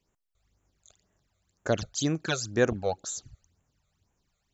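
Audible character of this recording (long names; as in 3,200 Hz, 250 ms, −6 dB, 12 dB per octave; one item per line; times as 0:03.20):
phaser sweep stages 12, 2 Hz, lowest notch 280–4,600 Hz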